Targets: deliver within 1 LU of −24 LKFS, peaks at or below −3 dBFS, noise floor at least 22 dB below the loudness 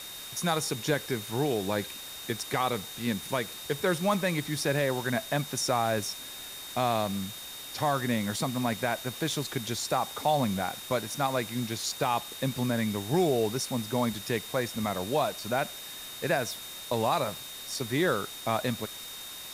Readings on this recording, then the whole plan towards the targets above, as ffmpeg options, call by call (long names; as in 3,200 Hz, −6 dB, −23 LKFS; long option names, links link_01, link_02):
interfering tone 3,700 Hz; level of the tone −43 dBFS; background noise floor −42 dBFS; target noise floor −52 dBFS; integrated loudness −30.0 LKFS; sample peak −14.5 dBFS; target loudness −24.0 LKFS
→ -af "bandreject=frequency=3700:width=30"
-af "afftdn=noise_reduction=10:noise_floor=-42"
-af "volume=6dB"